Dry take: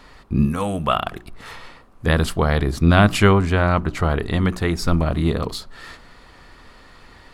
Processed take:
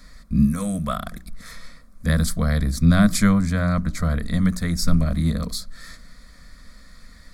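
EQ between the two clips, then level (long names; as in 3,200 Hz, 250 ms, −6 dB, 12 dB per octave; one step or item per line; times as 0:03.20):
flat-topped bell 670 Hz −12.5 dB 3 octaves
dynamic equaliser 2,500 Hz, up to −4 dB, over −40 dBFS
phaser with its sweep stopped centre 570 Hz, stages 8
+6.0 dB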